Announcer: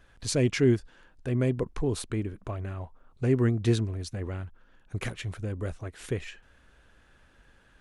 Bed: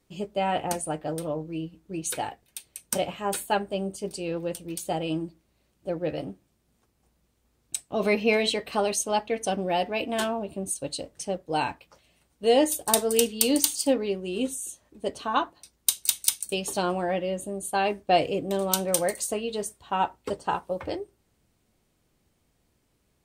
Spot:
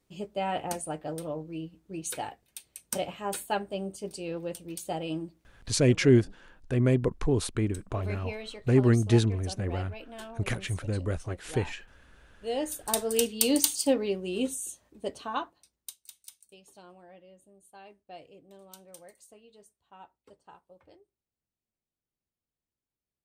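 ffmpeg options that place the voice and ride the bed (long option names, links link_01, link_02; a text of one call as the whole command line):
ffmpeg -i stem1.wav -i stem2.wav -filter_complex "[0:a]adelay=5450,volume=2.5dB[link_01];[1:a]volume=10dB,afade=type=out:start_time=5.51:duration=0.44:silence=0.266073,afade=type=in:start_time=12.35:duration=1.17:silence=0.188365,afade=type=out:start_time=14.7:duration=1.27:silence=0.0630957[link_02];[link_01][link_02]amix=inputs=2:normalize=0" out.wav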